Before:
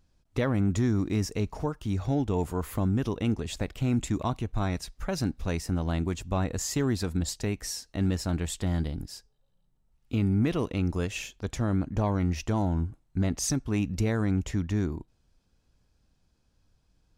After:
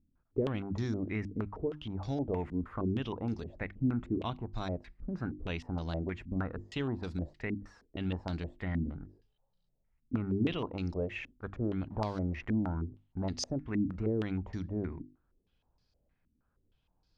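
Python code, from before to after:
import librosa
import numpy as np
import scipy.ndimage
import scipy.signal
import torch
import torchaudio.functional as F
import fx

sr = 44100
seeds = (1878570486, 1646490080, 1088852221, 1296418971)

y = fx.delta_hold(x, sr, step_db=-46.0, at=(11.89, 12.59))
y = fx.hum_notches(y, sr, base_hz=50, count=7)
y = fx.filter_held_lowpass(y, sr, hz=6.4, low_hz=260.0, high_hz=4700.0)
y = y * librosa.db_to_amplitude(-7.5)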